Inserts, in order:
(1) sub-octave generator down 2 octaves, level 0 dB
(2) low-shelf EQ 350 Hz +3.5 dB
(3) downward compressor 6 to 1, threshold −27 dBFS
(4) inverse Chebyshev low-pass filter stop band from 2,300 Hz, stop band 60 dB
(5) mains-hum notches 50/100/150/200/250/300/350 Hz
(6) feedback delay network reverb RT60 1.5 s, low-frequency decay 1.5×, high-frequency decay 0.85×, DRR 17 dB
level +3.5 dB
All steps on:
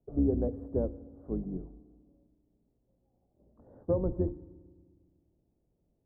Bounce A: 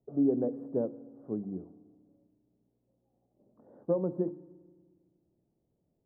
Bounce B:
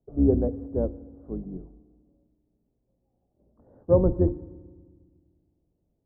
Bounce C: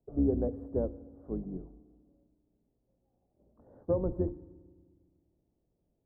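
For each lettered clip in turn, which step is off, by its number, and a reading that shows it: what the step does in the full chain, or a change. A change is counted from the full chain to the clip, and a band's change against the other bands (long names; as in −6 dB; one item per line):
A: 1, 125 Hz band −7.0 dB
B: 3, average gain reduction 3.0 dB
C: 2, 125 Hz band −2.0 dB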